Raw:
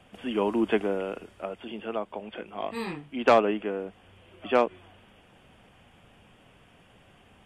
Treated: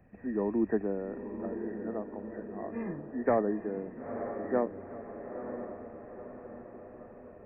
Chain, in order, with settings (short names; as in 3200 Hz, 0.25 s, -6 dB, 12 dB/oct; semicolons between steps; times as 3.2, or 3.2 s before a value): nonlinear frequency compression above 1600 Hz 4:1; bell 1700 Hz -15 dB 2.9 oct; diffused feedback echo 0.941 s, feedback 55%, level -8 dB